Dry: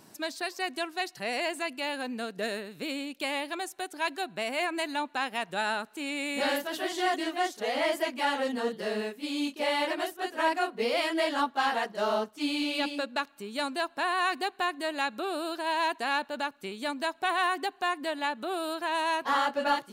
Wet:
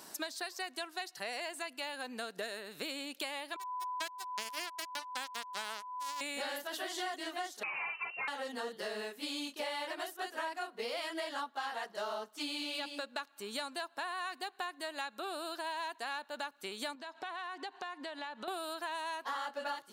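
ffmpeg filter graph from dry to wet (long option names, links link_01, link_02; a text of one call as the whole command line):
ffmpeg -i in.wav -filter_complex "[0:a]asettb=1/sr,asplit=3[link_01][link_02][link_03];[link_01]atrim=end=3.564[link_04];[link_02]atrim=start=3.56:end=6.21,asetpts=PTS-STARTPTS,afade=type=in:duration=0.004:curve=qsin,afade=type=out:start_time=2.646:duration=0.004:curve=qsin,acrusher=bits=3:mix=0:aa=0.5,aeval=exprs='val(0)+0.0126*sin(2*PI*1000*n/s)':channel_layout=same[link_05];[link_03]atrim=start=6.206[link_06];[link_04][link_05]acrossfade=duration=0.004:curve1=hsin:curve2=qsin[link_07];[link_07][link_06]acrossfade=duration=0.004:curve1=qsin:curve2=hsin,asettb=1/sr,asplit=3[link_08][link_09][link_10];[link_08]atrim=end=7.634[link_11];[link_09]atrim=start=7.63:end=8.28,asetpts=PTS-STARTPTS,afade=type=in:duration=0.004:curve=qsin,afade=type=out:start_time=0.646:duration=0.004:curve=qsin,aeval=exprs='(tanh(11.2*val(0)+0.1)-tanh(0.1))/11.2':channel_layout=same,lowpass=frequency=2600:width_type=q:width=0.5098,lowpass=frequency=2600:width_type=q:width=0.6013,lowpass=frequency=2600:width_type=q:width=0.9,lowpass=frequency=2600:width_type=q:width=2.563,afreqshift=-3000[link_12];[link_10]atrim=start=8.276[link_13];[link_11][link_12]acrossfade=duration=0.004:curve1=hsin:curve2=qsin[link_14];[link_14][link_13]acrossfade=duration=0.004:curve1=qsin:curve2=hsin,asettb=1/sr,asplit=3[link_15][link_16][link_17];[link_15]atrim=end=16.954[link_18];[link_16]atrim=start=16.95:end=18.48,asetpts=PTS-STARTPTS,afade=type=in:duration=0.004:curve=qsin,afade=type=out:start_time=1.526:duration=0.004:curve=qsin,lowpass=5500,acompressor=threshold=-41dB:ratio=6:attack=3.2:release=140:knee=1:detection=peak,aeval=exprs='val(0)+0.000282*sin(2*PI*930*n/s)':channel_layout=same[link_19];[link_17]atrim=start=18.476[link_20];[link_18][link_19]acrossfade=duration=0.004:curve1=hsin:curve2=qsin[link_21];[link_21][link_20]acrossfade=duration=0.004:curve1=qsin:curve2=hsin,highpass=frequency=840:poles=1,equalizer=frequency=2400:width=2.5:gain=-4.5,acompressor=threshold=-44dB:ratio=6,volume=7dB" out.wav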